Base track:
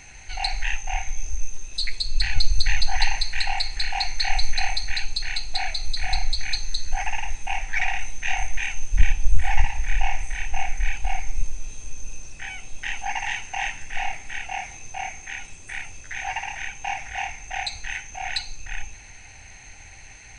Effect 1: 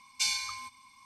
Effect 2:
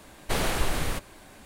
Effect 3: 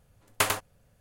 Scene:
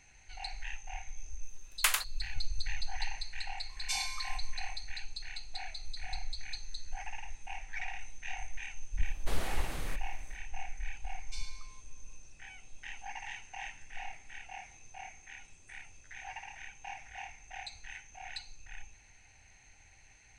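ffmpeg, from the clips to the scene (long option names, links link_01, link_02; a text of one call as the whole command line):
ffmpeg -i bed.wav -i cue0.wav -i cue1.wav -i cue2.wav -filter_complex "[1:a]asplit=2[link_01][link_02];[0:a]volume=-15.5dB[link_03];[3:a]highpass=1500[link_04];[link_01]equalizer=frequency=4800:width_type=o:width=0.77:gain=-3[link_05];[link_02]lowpass=8400[link_06];[link_04]atrim=end=1,asetpts=PTS-STARTPTS,volume=-1dB,afade=type=in:duration=0.004:curve=hsin,afade=type=out:start_time=0.996:duration=0.004:curve=hsin,adelay=1440[link_07];[link_05]atrim=end=1.05,asetpts=PTS-STARTPTS,volume=-4.5dB,afade=type=in:duration=0.004:curve=hsin,afade=type=out:start_time=1.046:duration=0.004:curve=hsin,adelay=162729S[link_08];[2:a]atrim=end=1.45,asetpts=PTS-STARTPTS,volume=-12dB,afade=type=in:duration=0.1,afade=type=out:start_time=1.35:duration=0.1,adelay=8970[link_09];[link_06]atrim=end=1.05,asetpts=PTS-STARTPTS,volume=-17.5dB,afade=type=in:duration=0.004:curve=hsin,afade=type=out:start_time=1.046:duration=0.004:curve=hsin,adelay=11120[link_10];[link_03][link_07][link_08][link_09][link_10]amix=inputs=5:normalize=0" out.wav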